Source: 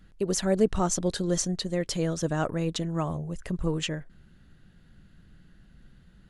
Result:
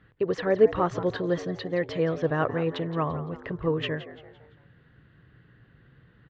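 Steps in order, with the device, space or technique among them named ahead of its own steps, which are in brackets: frequency-shifting delay pedal into a guitar cabinet (frequency-shifting echo 0.17 s, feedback 40%, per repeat +100 Hz, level -14.5 dB; speaker cabinet 81–3400 Hz, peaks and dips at 120 Hz +8 dB, 200 Hz -8 dB, 460 Hz +7 dB, 1100 Hz +7 dB, 1800 Hz +7 dB)

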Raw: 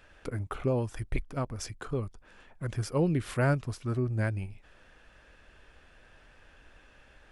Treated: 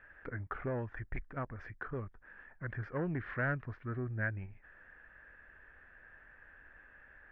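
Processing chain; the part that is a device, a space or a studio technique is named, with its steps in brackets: overdriven synthesiser ladder filter (soft clip -22.5 dBFS, distortion -15 dB; ladder low-pass 1900 Hz, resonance 70%); gain +4.5 dB

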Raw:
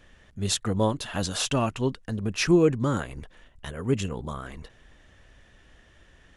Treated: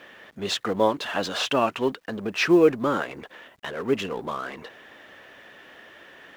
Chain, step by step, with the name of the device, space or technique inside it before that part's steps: phone line with mismatched companding (BPF 350–3300 Hz; G.711 law mismatch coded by mu); gain +5 dB

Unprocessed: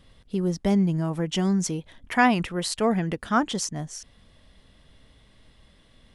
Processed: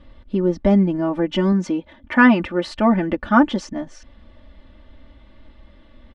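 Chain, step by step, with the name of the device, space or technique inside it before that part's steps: phone in a pocket (LPF 3400 Hz 12 dB/oct; high shelf 2300 Hz -8.5 dB); 1.52–2.67 HPF 94 Hz 6 dB/oct; comb 3.4 ms, depth 98%; gain +6 dB

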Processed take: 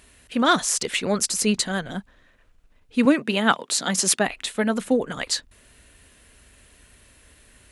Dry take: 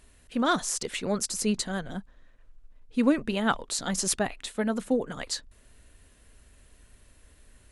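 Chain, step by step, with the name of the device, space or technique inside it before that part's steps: presence and air boost (bell 2500 Hz +4.5 dB 1.6 oct; high shelf 9800 Hz +4 dB); 3.05–4.28 HPF 150 Hz 24 dB/oct; HPF 70 Hz 6 dB/oct; gain +5 dB

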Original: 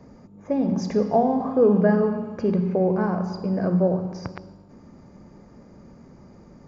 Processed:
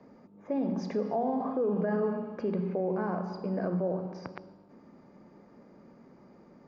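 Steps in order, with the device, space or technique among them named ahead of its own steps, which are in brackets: DJ mixer with the lows and highs turned down (three-band isolator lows -16 dB, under 180 Hz, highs -18 dB, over 4800 Hz; limiter -17.5 dBFS, peak gain reduction 9.5 dB); gain -4.5 dB

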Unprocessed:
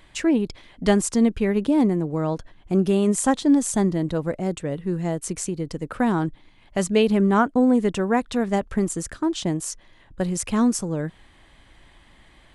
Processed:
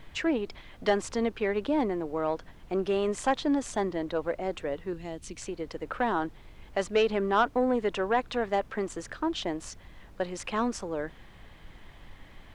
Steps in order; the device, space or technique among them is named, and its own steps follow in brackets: aircraft cabin announcement (BPF 460–3700 Hz; soft clip -14.5 dBFS, distortion -17 dB; brown noise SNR 17 dB); 4.93–5.42 band shelf 880 Hz -9.5 dB 2.6 oct

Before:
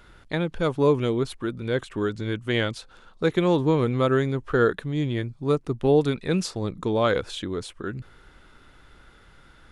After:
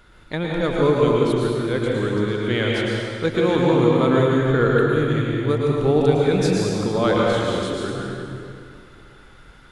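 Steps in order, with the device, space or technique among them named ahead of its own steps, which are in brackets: stairwell (reverb RT60 2.5 s, pre-delay 0.101 s, DRR -4 dB)

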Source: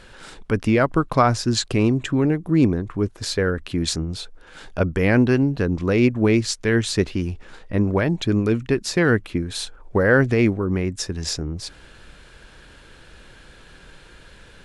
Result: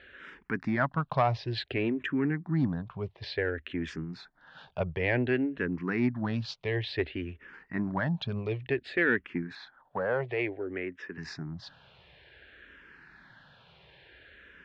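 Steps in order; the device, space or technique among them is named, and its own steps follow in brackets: barber-pole phaser into a guitar amplifier (endless phaser -0.56 Hz; soft clip -9 dBFS, distortion -24 dB; speaker cabinet 94–3700 Hz, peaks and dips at 100 Hz -5 dB, 210 Hz -5 dB, 320 Hz -5 dB, 490 Hz -5 dB, 1200 Hz -3 dB, 1800 Hz +6 dB); 9.55–11.18 three-band isolator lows -12 dB, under 250 Hz, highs -21 dB, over 4300 Hz; gain -4 dB

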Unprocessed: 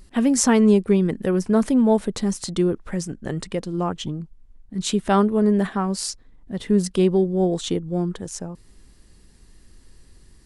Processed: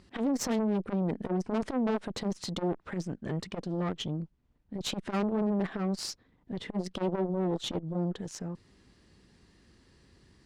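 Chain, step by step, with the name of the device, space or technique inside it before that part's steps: valve radio (BPF 90–4700 Hz; tube stage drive 23 dB, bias 0.55; core saturation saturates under 350 Hz)

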